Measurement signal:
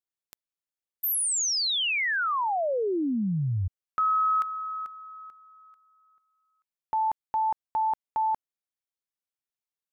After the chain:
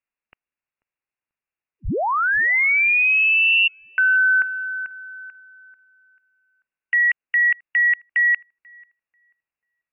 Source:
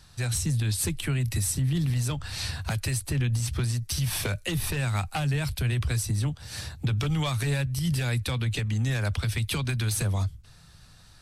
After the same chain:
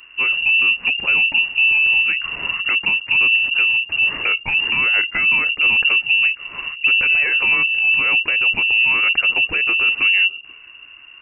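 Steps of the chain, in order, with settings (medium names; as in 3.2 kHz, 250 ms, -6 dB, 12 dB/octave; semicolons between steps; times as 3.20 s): frequency inversion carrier 2.8 kHz; treble shelf 2 kHz +9.5 dB; on a send: filtered feedback delay 489 ms, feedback 34%, low-pass 950 Hz, level -22.5 dB; on the sum: trim +4 dB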